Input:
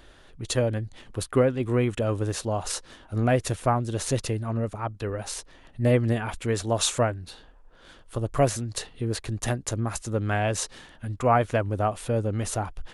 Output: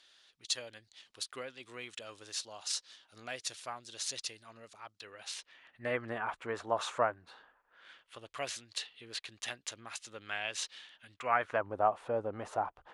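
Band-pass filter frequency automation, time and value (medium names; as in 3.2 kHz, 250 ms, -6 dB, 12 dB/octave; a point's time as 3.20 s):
band-pass filter, Q 1.5
4.99 s 4.6 kHz
6.22 s 1.1 kHz
7.26 s 1.1 kHz
8.30 s 3.2 kHz
11.12 s 3.2 kHz
11.67 s 890 Hz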